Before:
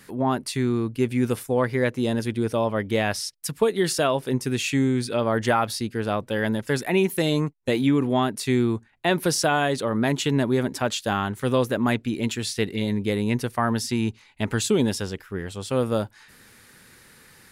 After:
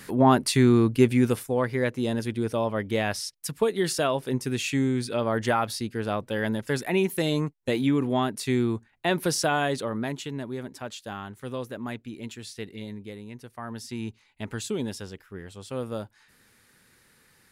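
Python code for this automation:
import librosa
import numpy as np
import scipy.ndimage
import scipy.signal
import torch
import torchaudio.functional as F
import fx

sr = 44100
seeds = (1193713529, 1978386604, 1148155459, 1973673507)

y = fx.gain(x, sr, db=fx.line((0.97, 5.0), (1.52, -3.0), (9.75, -3.0), (10.31, -12.0), (12.83, -12.0), (13.34, -18.5), (14.01, -9.0)))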